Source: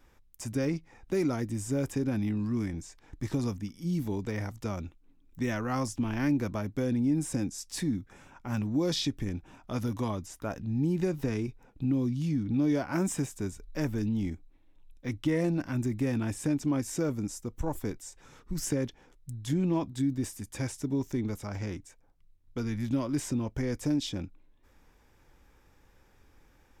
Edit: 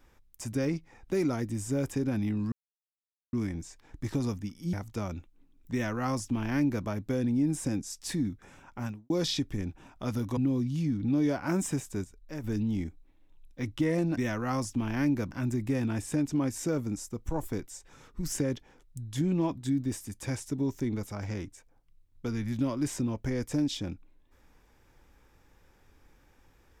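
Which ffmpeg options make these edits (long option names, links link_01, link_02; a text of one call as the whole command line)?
ffmpeg -i in.wav -filter_complex "[0:a]asplit=9[link_01][link_02][link_03][link_04][link_05][link_06][link_07][link_08][link_09];[link_01]atrim=end=2.52,asetpts=PTS-STARTPTS,afade=type=out:start_time=2.516:duration=0.004:curve=hsin,apad=pad_dur=0.81[link_10];[link_02]atrim=start=2.52:end=3.922,asetpts=PTS-STARTPTS,afade=type=in:duration=0.004:curve=hsin[link_11];[link_03]atrim=start=4.408:end=8.78,asetpts=PTS-STARTPTS,afade=type=out:start_time=4.082:duration=0.29:curve=qua[link_12];[link_04]atrim=start=8.78:end=10.052,asetpts=PTS-STARTPTS,afade=type=in:duration=0.004:curve=hsin[link_13];[link_05]atrim=start=11.828:end=13.502[link_14];[link_06]atrim=start=13.498:end=13.902,asetpts=PTS-STARTPTS,volume=-8dB[link_15];[link_07]atrim=start=13.898:end=15.632[link_16];[link_08]atrim=start=5.398:end=6.542[link_17];[link_09]atrim=start=15.628[link_18];[link_10][link_11]concat=n=2:v=0:a=1[link_19];[link_12][link_13]concat=n=2:v=0:a=1[link_20];[link_19][link_20]acrossfade=duration=0.004:curve1=hsin:curve2=hsin[link_21];[link_21][link_14]acrossfade=duration=0.004:curve1=hsin:curve2=hsin[link_22];[link_22][link_15]acrossfade=duration=0.004:curve1=hsin:curve2=hsin[link_23];[link_23][link_16]acrossfade=duration=0.004:curve1=hsin:curve2=hsin[link_24];[link_24][link_17]acrossfade=duration=0.004:curve1=hsin:curve2=hsin[link_25];[link_25][link_18]acrossfade=duration=0.004:curve1=hsin:curve2=hsin" out.wav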